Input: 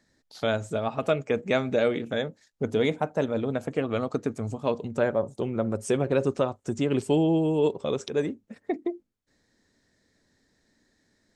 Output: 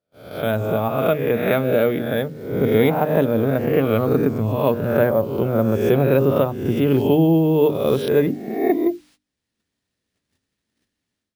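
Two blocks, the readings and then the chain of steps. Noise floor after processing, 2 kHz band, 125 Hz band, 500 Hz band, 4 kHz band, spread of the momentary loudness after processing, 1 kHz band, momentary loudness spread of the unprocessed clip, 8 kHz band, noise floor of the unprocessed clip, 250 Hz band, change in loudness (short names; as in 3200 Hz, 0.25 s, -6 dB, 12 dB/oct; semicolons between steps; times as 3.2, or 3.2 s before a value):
-81 dBFS, +6.0 dB, +10.5 dB, +8.0 dB, +3.0 dB, 7 LU, +7.5 dB, 8 LU, n/a, -71 dBFS, +8.5 dB, +8.5 dB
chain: spectral swells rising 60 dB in 0.78 s; HPF 57 Hz 12 dB/oct; added noise violet -45 dBFS; AGC gain up to 14 dB; air absorption 190 m; careless resampling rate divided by 3×, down none, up hold; low shelf 190 Hz +8.5 dB; gate -44 dBFS, range -27 dB; notches 50/100/150/200/250/300 Hz; gain -3.5 dB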